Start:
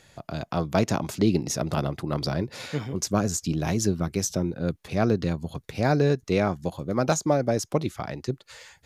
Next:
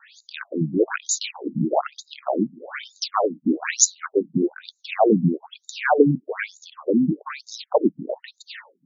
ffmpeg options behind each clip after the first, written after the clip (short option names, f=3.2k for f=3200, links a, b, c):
-af "aexciter=amount=10.9:drive=6.4:freq=7.6k,acontrast=87,afftfilt=real='re*between(b*sr/1024,210*pow(5200/210,0.5+0.5*sin(2*PI*1.1*pts/sr))/1.41,210*pow(5200/210,0.5+0.5*sin(2*PI*1.1*pts/sr))*1.41)':imag='im*between(b*sr/1024,210*pow(5200/210,0.5+0.5*sin(2*PI*1.1*pts/sr))/1.41,210*pow(5200/210,0.5+0.5*sin(2*PI*1.1*pts/sr))*1.41)':win_size=1024:overlap=0.75,volume=5dB"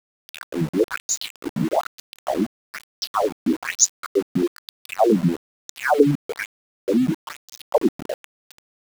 -af "aeval=exprs='val(0)*gte(abs(val(0)),0.0376)':c=same"